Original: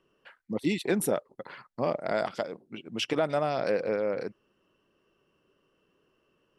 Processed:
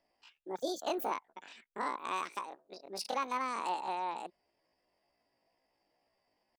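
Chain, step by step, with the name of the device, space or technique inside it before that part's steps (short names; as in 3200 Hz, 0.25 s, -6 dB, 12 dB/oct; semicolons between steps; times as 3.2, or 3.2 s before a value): chipmunk voice (pitch shift +9.5 st); gain -7.5 dB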